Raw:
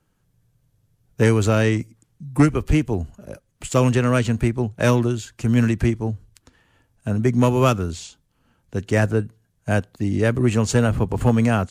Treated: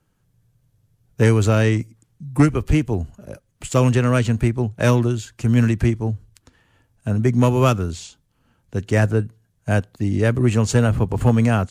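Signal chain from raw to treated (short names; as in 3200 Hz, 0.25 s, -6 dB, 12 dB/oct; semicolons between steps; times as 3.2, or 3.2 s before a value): bell 110 Hz +3 dB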